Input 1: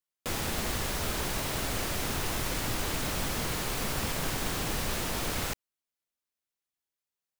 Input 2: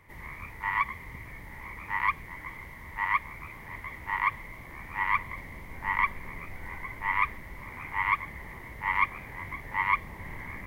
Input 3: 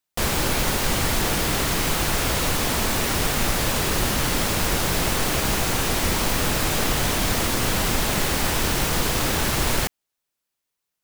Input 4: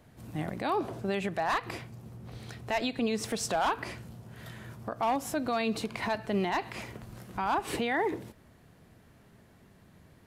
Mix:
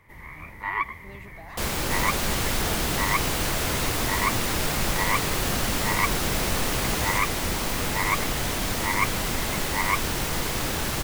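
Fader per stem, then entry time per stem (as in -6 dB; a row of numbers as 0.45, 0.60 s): +1.5, +0.5, -5.0, -16.0 dB; 1.65, 0.00, 1.40, 0.00 s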